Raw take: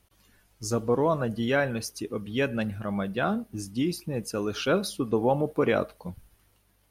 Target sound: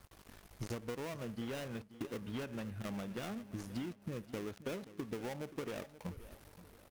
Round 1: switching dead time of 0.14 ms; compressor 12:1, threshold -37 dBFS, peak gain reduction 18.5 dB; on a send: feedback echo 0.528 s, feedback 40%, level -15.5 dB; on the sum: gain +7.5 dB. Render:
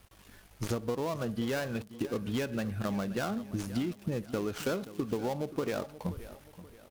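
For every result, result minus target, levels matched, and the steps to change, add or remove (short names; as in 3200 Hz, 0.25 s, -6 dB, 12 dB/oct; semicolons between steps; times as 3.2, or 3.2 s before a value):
compressor: peak gain reduction -8.5 dB; switching dead time: distortion -6 dB
change: compressor 12:1, threshold -46.5 dBFS, peak gain reduction 27.5 dB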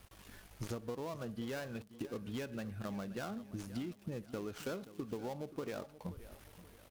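switching dead time: distortion -6 dB
change: switching dead time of 0.3 ms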